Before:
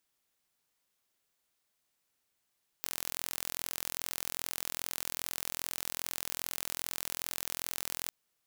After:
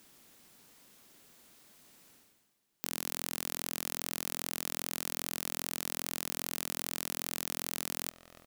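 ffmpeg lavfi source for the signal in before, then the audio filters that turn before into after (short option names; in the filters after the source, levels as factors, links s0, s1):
-f lavfi -i "aevalsrc='0.376*eq(mod(n,1038),0)':d=5.26:s=44100"
-filter_complex "[0:a]asplit=2[s0][s1];[s1]adelay=284,lowpass=f=2000:p=1,volume=0.075,asplit=2[s2][s3];[s3]adelay=284,lowpass=f=2000:p=1,volume=0.52,asplit=2[s4][s5];[s5]adelay=284,lowpass=f=2000:p=1,volume=0.52,asplit=2[s6][s7];[s7]adelay=284,lowpass=f=2000:p=1,volume=0.52[s8];[s0][s2][s4][s6][s8]amix=inputs=5:normalize=0,areverse,acompressor=mode=upward:threshold=0.00631:ratio=2.5,areverse,equalizer=f=230:t=o:w=1.7:g=10.5"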